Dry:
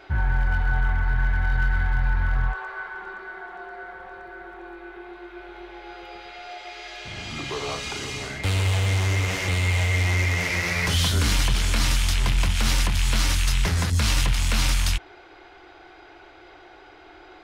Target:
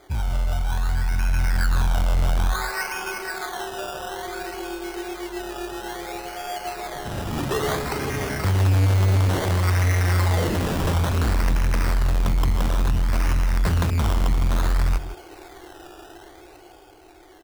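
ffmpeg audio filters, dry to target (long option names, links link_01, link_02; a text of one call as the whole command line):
ffmpeg -i in.wav -filter_complex "[0:a]dynaudnorm=framelen=220:gausssize=13:maxgain=10.5dB,aresample=11025,asoftclip=type=tanh:threshold=-16.5dB,aresample=44100,adynamicsmooth=sensitivity=1:basefreq=1100,acrusher=samples=16:mix=1:aa=0.000001:lfo=1:lforange=9.6:lforate=0.58,asplit=2[link_01][link_02];[link_02]adelay=157.4,volume=-12dB,highshelf=frequency=4000:gain=-3.54[link_03];[link_01][link_03]amix=inputs=2:normalize=0" out.wav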